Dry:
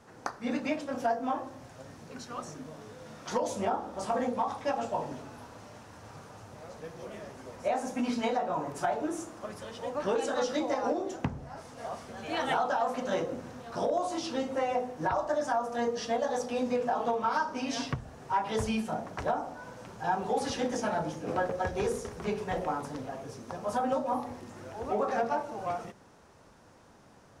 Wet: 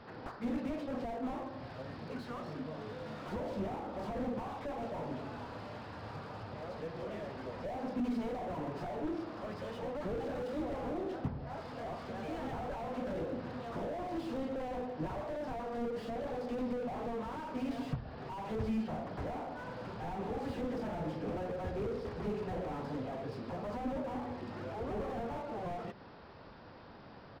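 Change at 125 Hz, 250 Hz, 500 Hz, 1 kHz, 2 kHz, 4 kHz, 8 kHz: 0.0 dB, −3.0 dB, −7.0 dB, −10.0 dB, −9.5 dB, −11.0 dB, below −15 dB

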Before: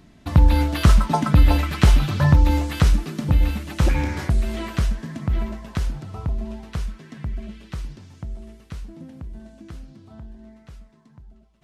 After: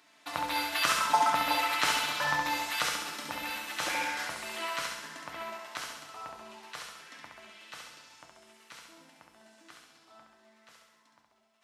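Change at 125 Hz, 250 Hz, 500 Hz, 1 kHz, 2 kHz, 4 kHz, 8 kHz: −34.5, −20.0, −9.0, −0.5, +1.0, +1.0, +1.5 decibels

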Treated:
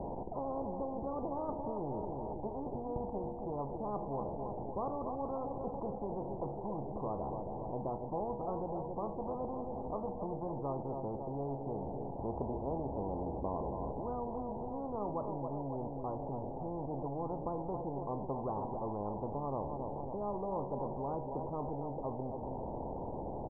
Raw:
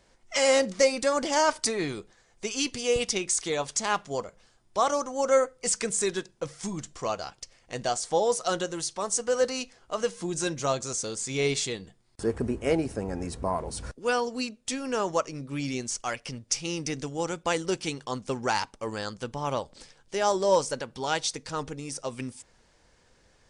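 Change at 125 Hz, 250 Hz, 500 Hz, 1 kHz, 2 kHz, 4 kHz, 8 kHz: −3.5 dB, −6.0 dB, −10.5 dB, −7.5 dB, below −40 dB, below −40 dB, below −40 dB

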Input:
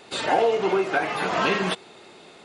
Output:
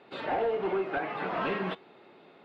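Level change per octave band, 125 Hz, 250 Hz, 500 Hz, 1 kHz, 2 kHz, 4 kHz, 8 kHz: −7.0 dB, −7.0 dB, −7.5 dB, −8.5 dB, −9.5 dB, −14.5 dB, below −30 dB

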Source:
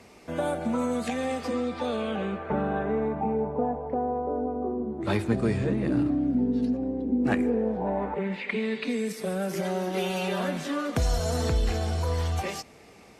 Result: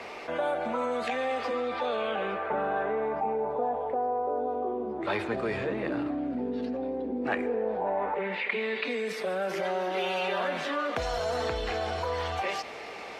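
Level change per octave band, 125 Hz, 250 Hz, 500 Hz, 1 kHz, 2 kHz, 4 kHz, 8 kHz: −13.0 dB, −8.5 dB, 0.0 dB, +2.5 dB, +3.0 dB, +0.5 dB, can't be measured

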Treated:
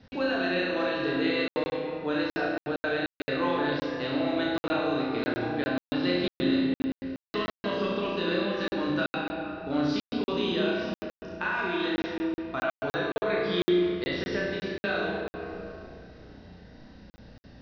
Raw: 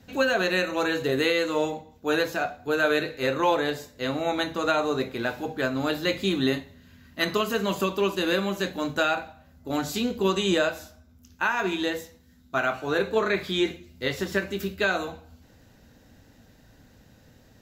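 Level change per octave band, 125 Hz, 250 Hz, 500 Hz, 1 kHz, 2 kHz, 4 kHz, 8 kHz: −2.0 dB, +0.5 dB, −3.0 dB, −4.5 dB, −4.0 dB, −4.0 dB, below −15 dB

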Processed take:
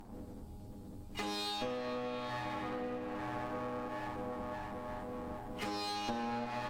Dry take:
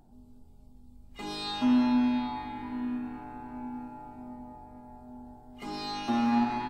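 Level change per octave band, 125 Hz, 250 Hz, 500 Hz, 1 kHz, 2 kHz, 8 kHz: 0.0 dB, −14.0 dB, +5.0 dB, −4.5 dB, −1.0 dB, can't be measured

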